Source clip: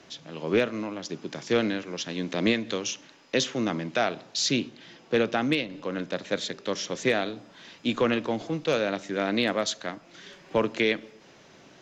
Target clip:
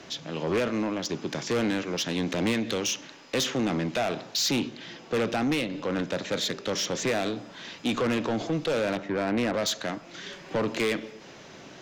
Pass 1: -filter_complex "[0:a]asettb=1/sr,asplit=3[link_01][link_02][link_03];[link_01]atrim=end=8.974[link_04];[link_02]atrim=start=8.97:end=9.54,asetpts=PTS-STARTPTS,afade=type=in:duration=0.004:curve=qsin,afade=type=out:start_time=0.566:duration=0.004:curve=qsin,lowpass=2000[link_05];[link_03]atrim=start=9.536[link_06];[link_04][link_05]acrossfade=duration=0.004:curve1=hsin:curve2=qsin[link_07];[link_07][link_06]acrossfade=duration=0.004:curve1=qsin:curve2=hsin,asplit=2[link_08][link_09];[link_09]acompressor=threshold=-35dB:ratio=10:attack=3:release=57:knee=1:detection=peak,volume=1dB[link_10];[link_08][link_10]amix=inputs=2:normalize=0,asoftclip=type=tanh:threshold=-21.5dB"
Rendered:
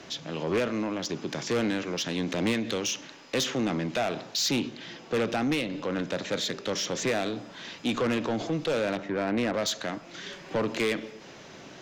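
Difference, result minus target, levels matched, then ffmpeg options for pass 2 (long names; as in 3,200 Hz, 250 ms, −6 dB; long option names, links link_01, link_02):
downward compressor: peak gain reduction +6.5 dB
-filter_complex "[0:a]asettb=1/sr,asplit=3[link_01][link_02][link_03];[link_01]atrim=end=8.974[link_04];[link_02]atrim=start=8.97:end=9.54,asetpts=PTS-STARTPTS,afade=type=in:duration=0.004:curve=qsin,afade=type=out:start_time=0.566:duration=0.004:curve=qsin,lowpass=2000[link_05];[link_03]atrim=start=9.536[link_06];[link_04][link_05]acrossfade=duration=0.004:curve1=hsin:curve2=qsin[link_07];[link_07][link_06]acrossfade=duration=0.004:curve1=qsin:curve2=hsin,asplit=2[link_08][link_09];[link_09]acompressor=threshold=-28dB:ratio=10:attack=3:release=57:knee=1:detection=peak,volume=1dB[link_10];[link_08][link_10]amix=inputs=2:normalize=0,asoftclip=type=tanh:threshold=-21.5dB"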